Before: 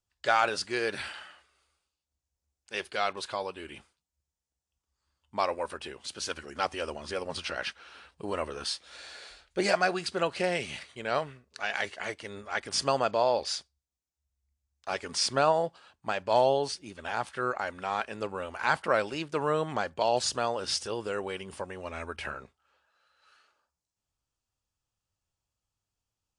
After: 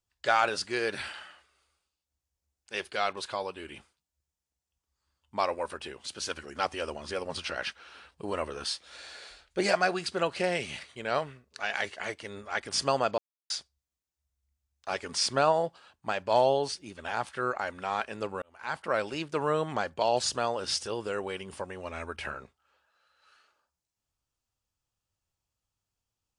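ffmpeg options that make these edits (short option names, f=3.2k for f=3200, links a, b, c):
-filter_complex "[0:a]asplit=4[a][b][c][d];[a]atrim=end=13.18,asetpts=PTS-STARTPTS,afade=t=out:st=13.176:d=0.004:c=hsin[e];[b]atrim=start=13.18:end=13.5,asetpts=PTS-STARTPTS,volume=0[f];[c]atrim=start=13.5:end=18.42,asetpts=PTS-STARTPTS,afade=t=in:d=0.004:c=hsin,afade=t=out:st=4.916:d=0.004:c=hsin[g];[d]atrim=start=18.42,asetpts=PTS-STARTPTS,afade=t=in:d=0.72[h];[e][f][g][h]concat=n=4:v=0:a=1"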